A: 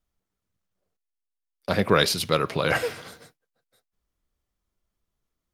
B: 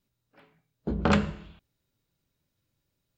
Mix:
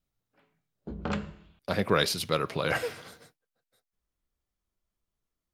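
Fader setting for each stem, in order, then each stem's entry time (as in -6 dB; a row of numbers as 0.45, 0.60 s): -5.0, -9.0 dB; 0.00, 0.00 s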